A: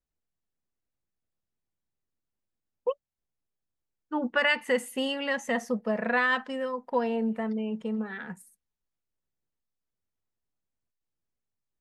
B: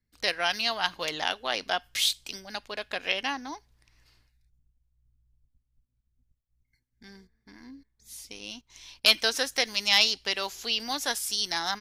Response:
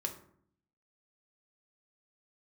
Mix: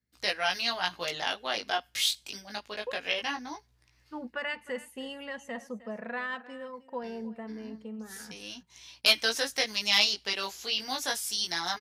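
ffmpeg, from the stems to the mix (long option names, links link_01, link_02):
-filter_complex "[0:a]volume=-10dB,asplit=2[link_01][link_02];[link_02]volume=-17.5dB[link_03];[1:a]flanger=delay=15.5:depth=4.3:speed=0.24,volume=1dB[link_04];[link_03]aecho=0:1:309:1[link_05];[link_01][link_04][link_05]amix=inputs=3:normalize=0,highpass=68"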